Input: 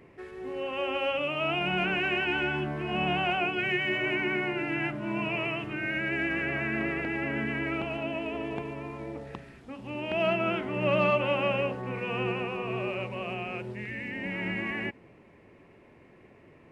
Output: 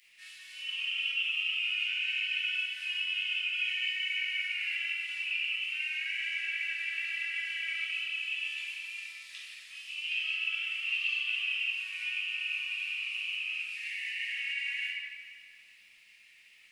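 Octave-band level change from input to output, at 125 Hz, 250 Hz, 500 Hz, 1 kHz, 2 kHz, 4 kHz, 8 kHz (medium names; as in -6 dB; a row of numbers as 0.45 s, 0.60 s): under -40 dB, under -40 dB, under -40 dB, under -25 dB, -0.5 dB, +5.0 dB, no reading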